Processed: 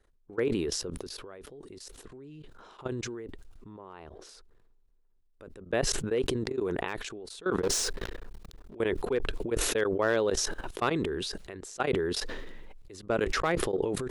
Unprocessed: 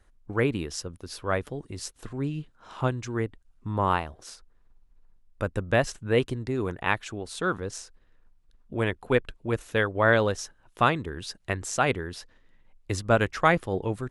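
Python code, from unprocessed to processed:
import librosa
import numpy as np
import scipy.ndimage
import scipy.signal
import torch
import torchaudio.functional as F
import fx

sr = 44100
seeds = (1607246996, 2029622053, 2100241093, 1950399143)

y = fx.leveller(x, sr, passes=5, at=(7.63, 8.75))
y = fx.graphic_eq_15(y, sr, hz=(100, 400, 4000), db=(-8, 10, 3))
y = np.clip(y, -10.0 ** (-8.5 / 20.0), 10.0 ** (-8.5 / 20.0))
y = fx.level_steps(y, sr, step_db=20)
y = fx.high_shelf(y, sr, hz=6600.0, db=-12.0, at=(3.69, 4.29))
y = fx.sustainer(y, sr, db_per_s=23.0)
y = y * 10.0 ** (-6.5 / 20.0)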